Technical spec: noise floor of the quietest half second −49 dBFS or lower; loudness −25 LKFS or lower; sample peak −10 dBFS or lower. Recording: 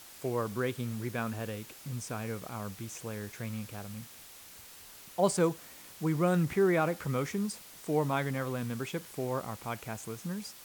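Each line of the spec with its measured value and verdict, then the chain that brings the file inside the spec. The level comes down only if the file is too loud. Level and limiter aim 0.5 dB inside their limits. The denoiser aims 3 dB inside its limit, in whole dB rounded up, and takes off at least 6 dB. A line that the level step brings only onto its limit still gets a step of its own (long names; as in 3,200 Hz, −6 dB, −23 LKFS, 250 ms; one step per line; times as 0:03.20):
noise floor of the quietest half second −51 dBFS: in spec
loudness −33.5 LKFS: in spec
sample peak −13.5 dBFS: in spec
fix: no processing needed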